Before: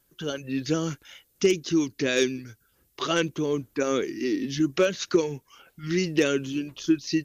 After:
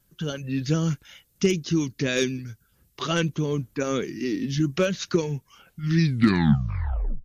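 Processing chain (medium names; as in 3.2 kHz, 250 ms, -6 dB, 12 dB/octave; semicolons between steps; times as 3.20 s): tape stop on the ending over 1.38 s; resonant low shelf 240 Hz +7 dB, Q 1.5; MP3 64 kbps 32 kHz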